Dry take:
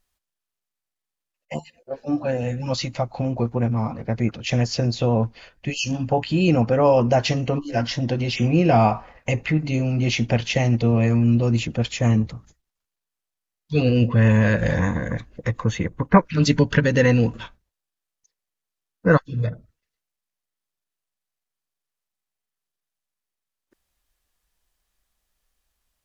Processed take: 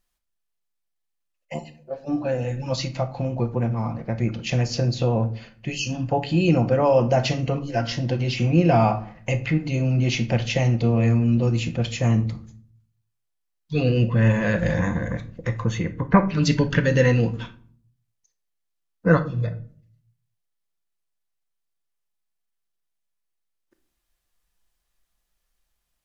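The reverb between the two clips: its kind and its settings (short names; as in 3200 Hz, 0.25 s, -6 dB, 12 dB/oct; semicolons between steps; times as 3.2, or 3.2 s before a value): shoebox room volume 480 m³, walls furnished, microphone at 0.81 m; gain -2.5 dB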